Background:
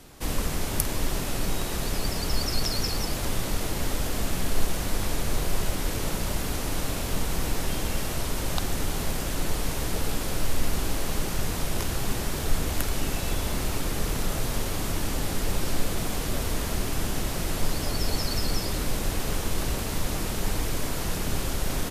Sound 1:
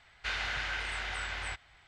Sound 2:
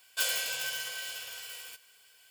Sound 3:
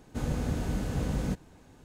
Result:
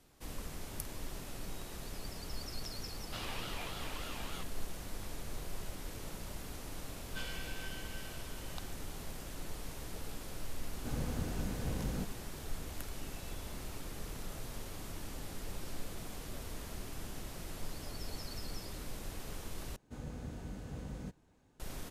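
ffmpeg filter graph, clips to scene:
ffmpeg -i bed.wav -i cue0.wav -i cue1.wav -i cue2.wav -filter_complex "[3:a]asplit=2[link_01][link_02];[0:a]volume=-16dB[link_03];[1:a]aeval=exprs='val(0)*sin(2*PI*1100*n/s+1100*0.25/3.4*sin(2*PI*3.4*n/s))':channel_layout=same[link_04];[2:a]lowpass=3500[link_05];[link_03]asplit=2[link_06][link_07];[link_06]atrim=end=19.764[link_08];[link_02]atrim=end=1.84,asetpts=PTS-STARTPTS,volume=-13.5dB[link_09];[link_07]atrim=start=21.596[link_10];[link_04]atrim=end=1.87,asetpts=PTS-STARTPTS,volume=-6.5dB,afade=type=in:duration=0.004:curve=hsin,afade=type=out:start_time=1.866:duration=0.004:curve=hsin,adelay=2880[link_11];[link_05]atrim=end=2.3,asetpts=PTS-STARTPTS,volume=-11dB,afade=type=in:duration=0.004:curve=hsin,afade=type=out:start_time=2.296:duration=0.004:curve=hsin,adelay=307818S[link_12];[link_01]atrim=end=1.84,asetpts=PTS-STARTPTS,volume=-7.5dB,afade=type=in:duration=0.004:curve=hsin,afade=type=out:start_time=1.836:duration=0.004:curve=hsin,adelay=10700[link_13];[link_08][link_09]acrossfade=duration=0.004:curve1=hsin:curve2=hsin[link_14];[link_14][link_10]acrossfade=duration=0.004:curve1=hsin:curve2=hsin[link_15];[link_15][link_11][link_12][link_13]amix=inputs=4:normalize=0" out.wav

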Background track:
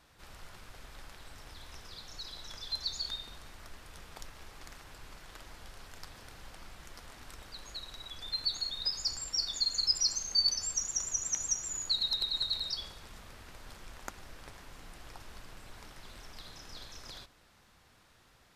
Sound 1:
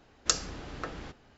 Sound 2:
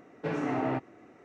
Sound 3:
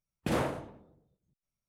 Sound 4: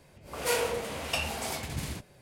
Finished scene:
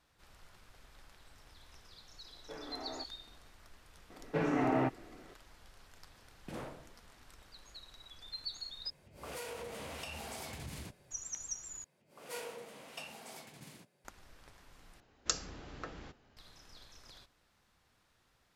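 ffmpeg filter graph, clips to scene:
ffmpeg -i bed.wav -i cue0.wav -i cue1.wav -i cue2.wav -i cue3.wav -filter_complex "[2:a]asplit=2[link_01][link_02];[4:a]asplit=2[link_03][link_04];[0:a]volume=-9dB[link_05];[link_01]highpass=350,lowpass=2200[link_06];[link_03]acompressor=threshold=-33dB:ratio=6:attack=3.2:release=140:knee=1:detection=peak[link_07];[link_04]highpass=frequency=140:width=0.5412,highpass=frequency=140:width=1.3066[link_08];[link_05]asplit=4[link_09][link_10][link_11][link_12];[link_09]atrim=end=8.904[link_13];[link_07]atrim=end=2.21,asetpts=PTS-STARTPTS,volume=-7dB[link_14];[link_10]atrim=start=11.106:end=11.844[link_15];[link_08]atrim=end=2.21,asetpts=PTS-STARTPTS,volume=-15.5dB[link_16];[link_11]atrim=start=14.046:end=15.004[link_17];[1:a]atrim=end=1.37,asetpts=PTS-STARTPTS,volume=-7dB[link_18];[link_12]atrim=start=16.366[link_19];[link_06]atrim=end=1.24,asetpts=PTS-STARTPTS,volume=-13dB,afade=type=in:duration=0.004:curve=hsin,afade=type=out:start_time=1.236:duration=0.004:curve=hsin,adelay=2250[link_20];[link_02]atrim=end=1.24,asetpts=PTS-STARTPTS,volume=-0.5dB,afade=type=in:duration=0.004:curve=hsin,afade=type=out:start_time=1.236:duration=0.004:curve=hsin,adelay=4100[link_21];[3:a]atrim=end=1.68,asetpts=PTS-STARTPTS,volume=-14.5dB,afade=type=in:duration=0.004:curve=hsin,afade=type=out:start_time=1.676:duration=0.004:curve=hsin,adelay=6220[link_22];[link_13][link_14]acrossfade=duration=0.004:curve1=hsin:curve2=hsin[link_23];[link_23][link_15]acrossfade=duration=0.004:curve1=hsin:curve2=hsin[link_24];[link_24][link_16]acrossfade=duration=0.004:curve1=hsin:curve2=hsin[link_25];[link_25][link_17]acrossfade=duration=0.004:curve1=hsin:curve2=hsin[link_26];[link_26][link_18]acrossfade=duration=0.004:curve1=hsin:curve2=hsin[link_27];[link_27][link_19]acrossfade=duration=0.004:curve1=hsin:curve2=hsin[link_28];[link_28][link_20][link_21][link_22]amix=inputs=4:normalize=0" out.wav

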